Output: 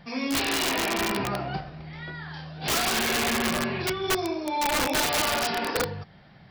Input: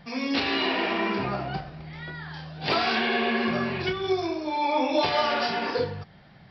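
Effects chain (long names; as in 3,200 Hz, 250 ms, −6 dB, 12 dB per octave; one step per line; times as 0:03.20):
wrap-around overflow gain 18.5 dB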